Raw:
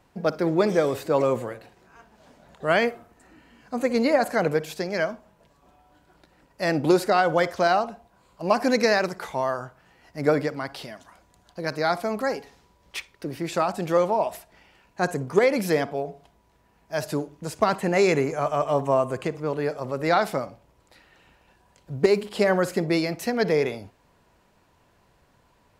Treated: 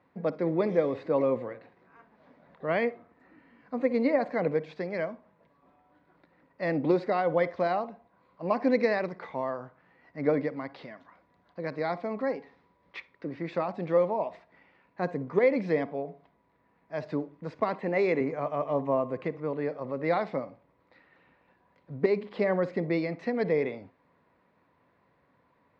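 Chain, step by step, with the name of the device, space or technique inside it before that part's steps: 17.61–18.21 s: high-pass 200 Hz; guitar cabinet (cabinet simulation 94–3700 Hz, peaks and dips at 170 Hz +4 dB, 270 Hz +7 dB, 510 Hz +6 dB, 1.1 kHz +6 dB, 2 kHz +7 dB, 3 kHz -7 dB); dynamic bell 1.4 kHz, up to -7 dB, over -37 dBFS, Q 1.8; trim -8 dB

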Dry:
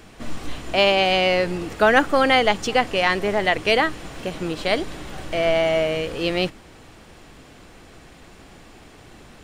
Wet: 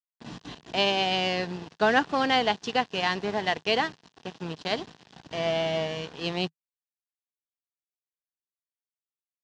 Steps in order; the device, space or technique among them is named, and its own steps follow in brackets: blown loudspeaker (crossover distortion -29.5 dBFS; cabinet simulation 120–5900 Hz, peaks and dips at 160 Hz +4 dB, 320 Hz -4 dB, 560 Hz -8 dB, 1.3 kHz -7 dB, 2.2 kHz -8 dB); trim -2 dB

